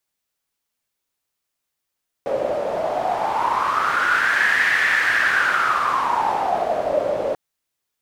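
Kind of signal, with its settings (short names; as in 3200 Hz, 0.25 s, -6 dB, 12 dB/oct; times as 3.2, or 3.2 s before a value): wind-like swept noise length 5.09 s, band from 560 Hz, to 1800 Hz, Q 8, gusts 1, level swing 5 dB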